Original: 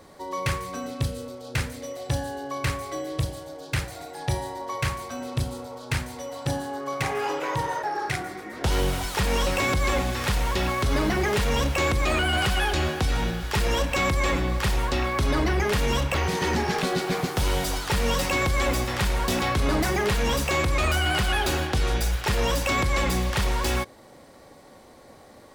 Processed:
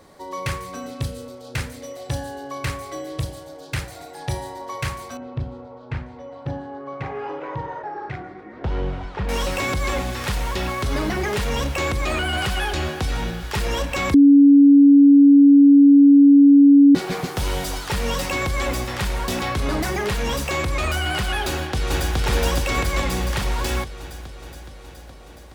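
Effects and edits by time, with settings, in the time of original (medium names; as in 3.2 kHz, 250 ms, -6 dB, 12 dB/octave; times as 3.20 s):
5.17–9.29 s: tape spacing loss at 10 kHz 38 dB
14.14–16.95 s: bleep 282 Hz -7 dBFS
21.48–22.17 s: echo throw 420 ms, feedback 70%, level 0 dB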